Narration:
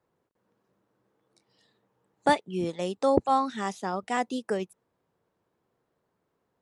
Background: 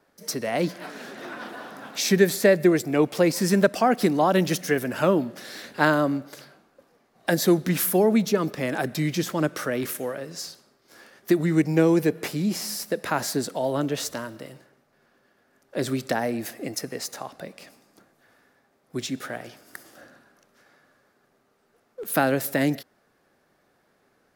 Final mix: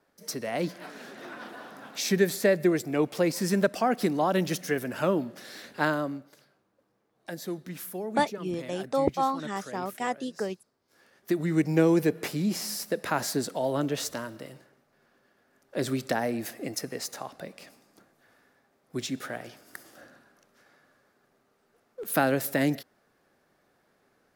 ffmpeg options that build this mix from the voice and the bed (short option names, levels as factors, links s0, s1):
-filter_complex "[0:a]adelay=5900,volume=0.75[s0];[1:a]volume=2.51,afade=t=out:st=5.76:d=0.61:silence=0.298538,afade=t=in:st=10.9:d=0.84:silence=0.223872[s1];[s0][s1]amix=inputs=2:normalize=0"